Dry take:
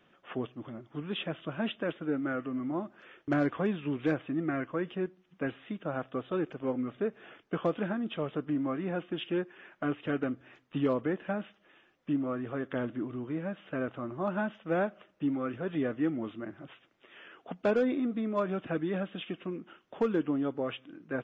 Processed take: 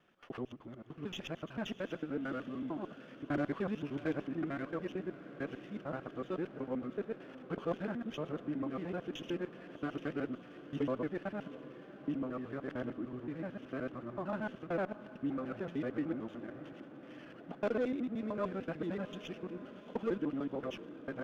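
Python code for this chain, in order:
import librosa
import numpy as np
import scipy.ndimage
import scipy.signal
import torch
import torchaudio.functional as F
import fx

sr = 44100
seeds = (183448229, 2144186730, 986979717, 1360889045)

y = fx.local_reverse(x, sr, ms=75.0)
y = fx.echo_diffused(y, sr, ms=680, feedback_pct=74, wet_db=-15.0)
y = fx.running_max(y, sr, window=3)
y = y * librosa.db_to_amplitude(-6.0)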